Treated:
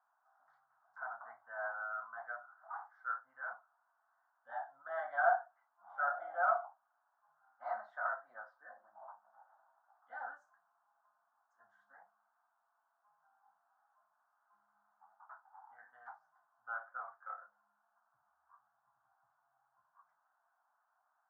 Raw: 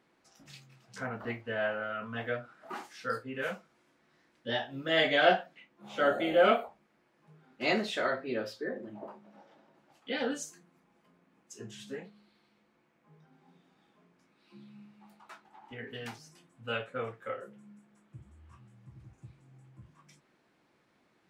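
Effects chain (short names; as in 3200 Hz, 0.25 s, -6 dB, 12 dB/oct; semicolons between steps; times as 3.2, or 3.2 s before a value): elliptic band-pass 710–1500 Hz, stop band 40 dB; gain -2 dB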